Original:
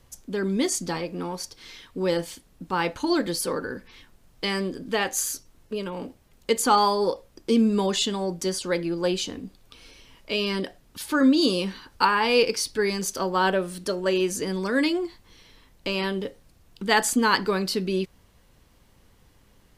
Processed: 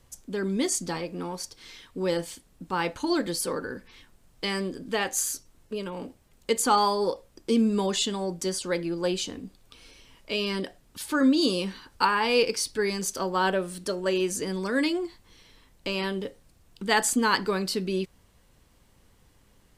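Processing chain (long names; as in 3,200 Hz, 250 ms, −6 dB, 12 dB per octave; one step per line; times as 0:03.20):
parametric band 8,200 Hz +4 dB 0.46 octaves
level −2.5 dB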